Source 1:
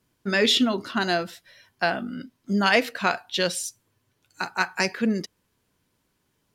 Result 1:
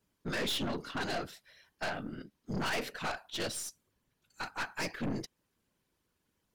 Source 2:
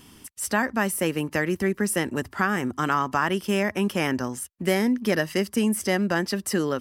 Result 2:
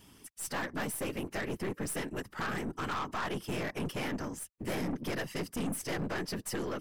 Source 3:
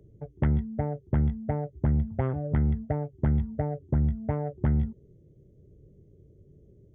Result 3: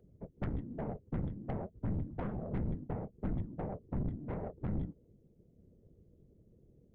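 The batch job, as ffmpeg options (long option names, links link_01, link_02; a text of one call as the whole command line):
ffmpeg -i in.wav -af "afftfilt=real='hypot(re,im)*cos(2*PI*random(0))':imag='hypot(re,im)*sin(2*PI*random(1))':win_size=512:overlap=0.75,aeval=exprs='(tanh(35.5*val(0)+0.45)-tanh(0.45))/35.5':channel_layout=same" out.wav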